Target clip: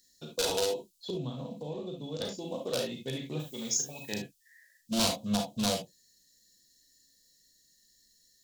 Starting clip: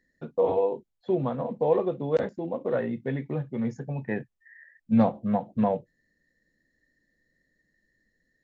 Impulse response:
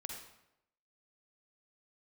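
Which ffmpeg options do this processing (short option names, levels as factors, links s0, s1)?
-filter_complex "[0:a]asettb=1/sr,asplit=3[s0][s1][s2];[s0]atrim=end=1.104[s3];[s1]atrim=start=1.1:end=2.21,asetpts=PTS-STARTPTS,afade=t=in:d=0.004:c=qsin,afade=t=out:st=1.106:d=0.004:c=qsin,acrossover=split=300[s4][s5];[s5]acompressor=threshold=0.01:ratio=3[s6];[s4][s6]amix=inputs=2:normalize=0[s7];[s2]atrim=start=2.206[s8];[s3][s7]acrossfade=d=0.004:c1=hsin:c2=qsin[s9];[s9][s8]acrossfade=d=0.004:c1=qsin:c2=hsin,asplit=3[s10][s11][s12];[s10]afade=t=out:st=3.39:d=0.02[s13];[s11]aemphasis=mode=production:type=bsi,afade=t=in:st=3.39:d=0.02,afade=t=out:st=4.12:d=0.02[s14];[s12]afade=t=in:st=4.12:d=0.02[s15];[s13][s14][s15]amix=inputs=3:normalize=0,aeval=exprs='0.119*(abs(mod(val(0)/0.119+3,4)-2)-1)':c=same,aexciter=amount=10.5:drive=9.6:freq=3100[s16];[1:a]atrim=start_sample=2205,afade=t=out:st=0.16:d=0.01,atrim=end_sample=7497,asetrate=61740,aresample=44100[s17];[s16][s17]afir=irnorm=-1:irlink=0"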